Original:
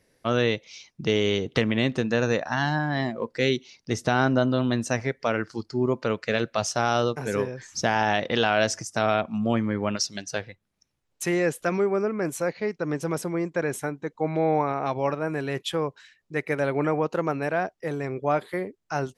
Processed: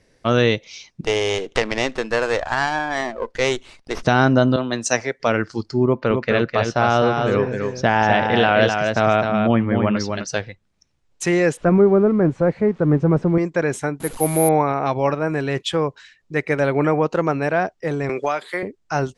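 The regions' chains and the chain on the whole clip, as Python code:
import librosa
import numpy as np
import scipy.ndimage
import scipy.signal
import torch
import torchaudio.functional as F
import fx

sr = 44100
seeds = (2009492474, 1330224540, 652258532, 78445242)

y = fx.chain(x, sr, fx.highpass(hz=440.0, slope=12),
    fx.running_max(window=5), at=(1.01, 4.03))
y = fx.chain(y, sr, fx.bass_treble(bass_db=-13, treble_db=6),
    fx.band_widen(depth_pct=100), at=(4.56, 5.2))
y = fx.chain(y, sr, fx.lowpass(hz=3100.0, slope=12),
    fx.echo_single(ms=257, db=-5.0), at=(5.85, 10.27))
y = fx.chain(y, sr, fx.crossing_spikes(level_db=-28.0),
    fx.lowpass(hz=1300.0, slope=12),
    fx.low_shelf(hz=240.0, db=11.5), at=(11.57, 13.38))
y = fx.chain(y, sr, fx.delta_mod(bps=64000, step_db=-38.0),
    fx.resample_bad(factor=4, down='filtered', up='zero_stuff'), at=(14.0, 14.49))
y = fx.chain(y, sr, fx.highpass(hz=1100.0, slope=6),
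    fx.high_shelf(hz=4800.0, db=6.0),
    fx.band_squash(depth_pct=100), at=(18.09, 18.63))
y = scipy.signal.sosfilt(scipy.signal.butter(4, 8600.0, 'lowpass', fs=sr, output='sos'), y)
y = fx.low_shelf(y, sr, hz=61.0, db=9.0)
y = y * librosa.db_to_amplitude(6.0)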